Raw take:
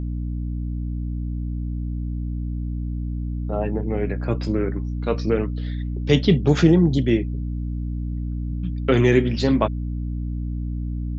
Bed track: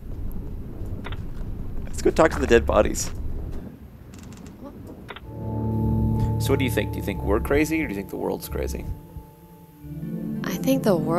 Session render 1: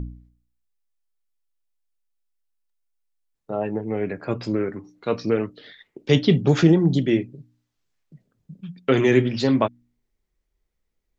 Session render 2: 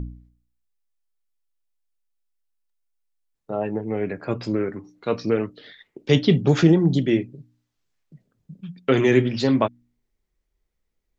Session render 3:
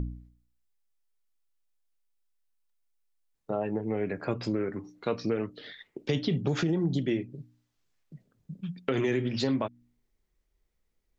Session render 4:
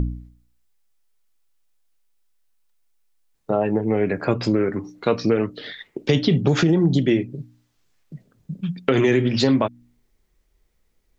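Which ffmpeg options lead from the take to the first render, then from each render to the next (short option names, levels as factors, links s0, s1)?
-af "bandreject=f=60:t=h:w=4,bandreject=f=120:t=h:w=4,bandreject=f=180:t=h:w=4,bandreject=f=240:t=h:w=4,bandreject=f=300:t=h:w=4"
-af anull
-af "alimiter=limit=0.299:level=0:latency=1:release=61,acompressor=threshold=0.0398:ratio=2.5"
-af "volume=3.16"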